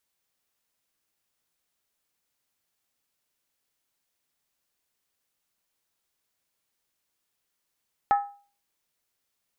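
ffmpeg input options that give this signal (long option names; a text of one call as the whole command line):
ffmpeg -f lavfi -i "aevalsrc='0.178*pow(10,-3*t/0.4)*sin(2*PI*809*t)+0.0631*pow(10,-3*t/0.317)*sin(2*PI*1289.5*t)+0.0224*pow(10,-3*t/0.274)*sin(2*PI*1728*t)+0.00794*pow(10,-3*t/0.264)*sin(2*PI*1857.5*t)+0.00282*pow(10,-3*t/0.246)*sin(2*PI*2146.3*t)':duration=0.63:sample_rate=44100" out.wav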